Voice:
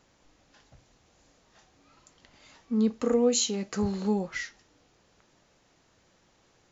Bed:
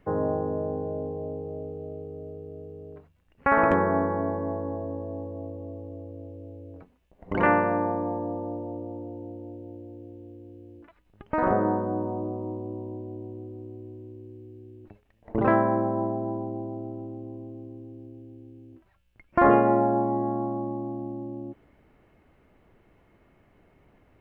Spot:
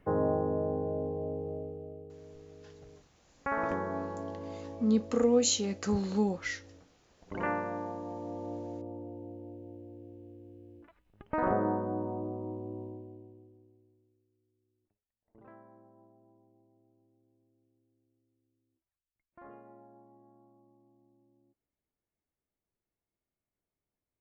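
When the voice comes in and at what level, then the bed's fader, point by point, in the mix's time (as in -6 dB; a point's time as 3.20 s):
2.10 s, -1.5 dB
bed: 1.51 s -2 dB
2.19 s -11.5 dB
8.04 s -11.5 dB
8.52 s -5.5 dB
12.83 s -5.5 dB
14.28 s -33.5 dB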